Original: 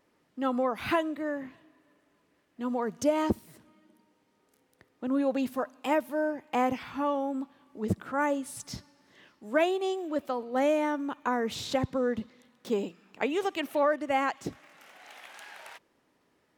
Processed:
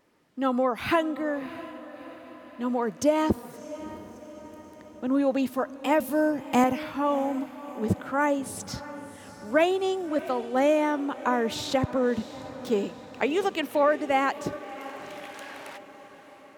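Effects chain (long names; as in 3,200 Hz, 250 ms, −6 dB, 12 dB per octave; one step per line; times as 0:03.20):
0:06.00–0:06.64: bass and treble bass +13 dB, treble +10 dB
on a send: feedback delay with all-pass diffusion 656 ms, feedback 56%, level −15 dB
on the sum: level +3.5 dB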